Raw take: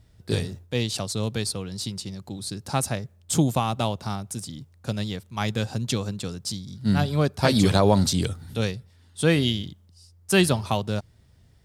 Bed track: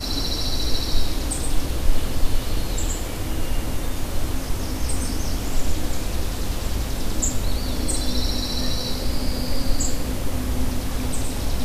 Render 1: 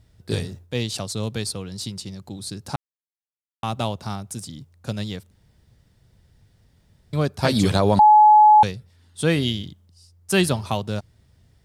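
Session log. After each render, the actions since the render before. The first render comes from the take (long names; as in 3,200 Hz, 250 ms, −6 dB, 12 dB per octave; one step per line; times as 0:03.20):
0:02.76–0:03.63: silence
0:05.31–0:07.13: fill with room tone
0:07.99–0:08.63: beep over 850 Hz −8 dBFS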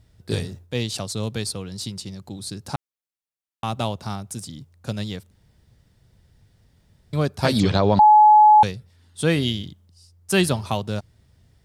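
0:07.60–0:08.04: low-pass filter 5,600 Hz 24 dB per octave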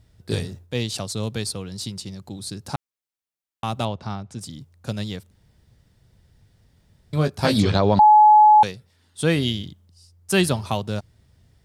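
0:03.85–0:04.41: high-frequency loss of the air 130 metres
0:07.15–0:07.74: double-tracking delay 19 ms −7.5 dB
0:08.45–0:09.23: low-shelf EQ 150 Hz −10.5 dB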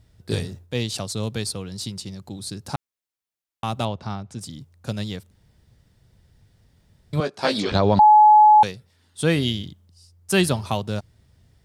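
0:07.20–0:07.72: band-pass filter 330–7,000 Hz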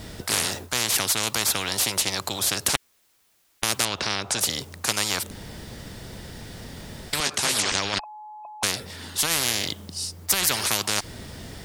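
compressor whose output falls as the input rises −18 dBFS, ratio −0.5
every bin compressed towards the loudest bin 10 to 1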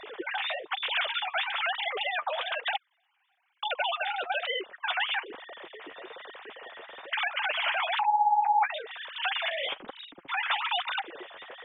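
three sine waves on the formant tracks
flanger 1.1 Hz, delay 1.7 ms, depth 9.3 ms, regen +31%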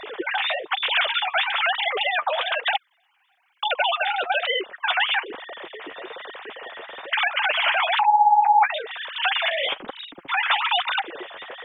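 level +7.5 dB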